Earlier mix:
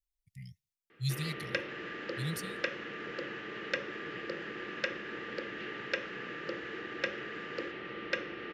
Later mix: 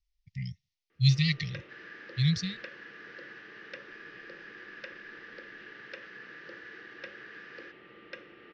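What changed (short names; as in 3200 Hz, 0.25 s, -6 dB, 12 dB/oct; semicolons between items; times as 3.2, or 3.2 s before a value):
speech +11.0 dB; first sound -11.0 dB; master: add steep low-pass 5900 Hz 48 dB/oct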